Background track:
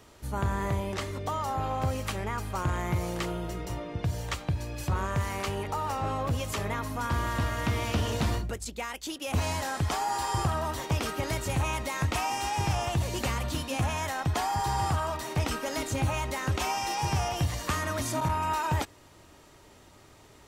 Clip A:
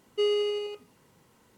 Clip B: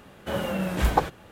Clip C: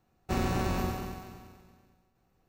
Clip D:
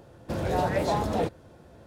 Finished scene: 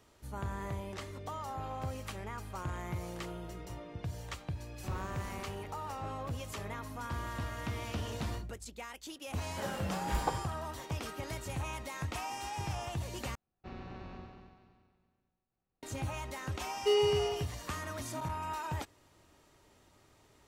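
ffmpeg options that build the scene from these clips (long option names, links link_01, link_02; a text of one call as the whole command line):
ffmpeg -i bed.wav -i cue0.wav -i cue1.wav -i cue2.wav -filter_complex "[3:a]asplit=2[link_01][link_02];[0:a]volume=-9.5dB[link_03];[link_02]lowpass=frequency=4300:width=0.5412,lowpass=frequency=4300:width=1.3066[link_04];[link_03]asplit=2[link_05][link_06];[link_05]atrim=end=13.354[link_07];[link_04]atrim=end=2.48,asetpts=PTS-STARTPTS,volume=-16.5dB[link_08];[link_06]atrim=start=15.826[link_09];[link_01]atrim=end=2.48,asetpts=PTS-STARTPTS,volume=-16.5dB,afade=type=in:duration=0.004:curve=hsin,afade=type=out:start_time=2.476:duration=0.004:curve=hsin,adelay=4540[link_10];[2:a]atrim=end=1.31,asetpts=PTS-STARTPTS,volume=-11dB,afade=type=in:duration=0.004:curve=hsin,afade=type=out:start_time=1.306:duration=0.004:curve=hsin,adelay=410130S[link_11];[1:a]atrim=end=1.57,asetpts=PTS-STARTPTS,volume=-2dB,afade=type=in:duration=0.004:curve=hsin,afade=type=out:start_time=1.566:duration=0.004:curve=hsin,adelay=735588S[link_12];[link_07][link_08]acrossfade=duration=0.004:curve1=hsin:curve2=hsin[link_13];[link_13][link_09]acrossfade=duration=0.004:curve1=hsin:curve2=hsin[link_14];[link_14][link_10][link_11][link_12]amix=inputs=4:normalize=0" out.wav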